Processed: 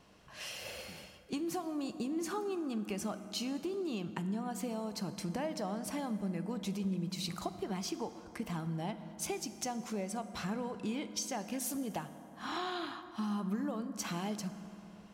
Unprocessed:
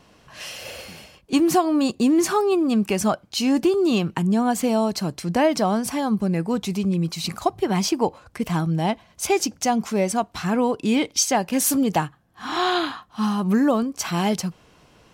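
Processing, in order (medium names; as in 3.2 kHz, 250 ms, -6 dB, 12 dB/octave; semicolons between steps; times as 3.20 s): compression, threshold -27 dBFS, peak gain reduction 13.5 dB; on a send: reverberation RT60 3.6 s, pre-delay 5 ms, DRR 10 dB; on the sum: trim -8.5 dB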